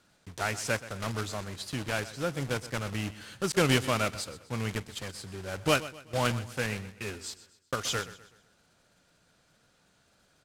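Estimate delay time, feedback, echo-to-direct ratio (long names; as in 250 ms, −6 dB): 126 ms, 40%, −15.5 dB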